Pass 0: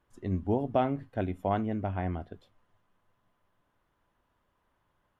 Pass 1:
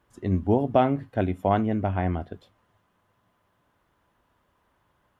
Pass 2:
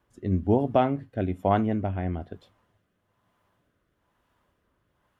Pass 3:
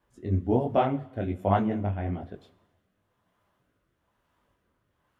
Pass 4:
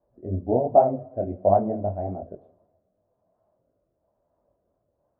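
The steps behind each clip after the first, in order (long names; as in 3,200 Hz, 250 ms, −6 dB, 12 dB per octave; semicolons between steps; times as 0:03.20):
high-pass filter 41 Hz; level +6.5 dB
rotating-speaker cabinet horn 1.1 Hz
four-comb reverb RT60 1.1 s, combs from 33 ms, DRR 17.5 dB; micro pitch shift up and down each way 46 cents; level +2 dB
low-pass with resonance 630 Hz, resonance Q 4.9; wow of a warped record 45 rpm, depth 100 cents; level −3 dB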